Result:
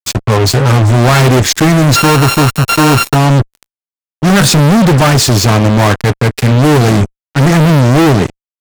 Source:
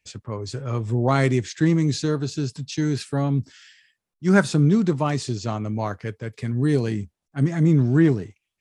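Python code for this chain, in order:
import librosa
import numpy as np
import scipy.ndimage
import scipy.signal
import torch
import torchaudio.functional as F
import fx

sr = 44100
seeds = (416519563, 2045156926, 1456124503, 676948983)

y = fx.sample_sort(x, sr, block=32, at=(1.95, 3.14), fade=0.02)
y = fx.fuzz(y, sr, gain_db=37.0, gate_db=-39.0)
y = y * 10.0 ** (7.5 / 20.0)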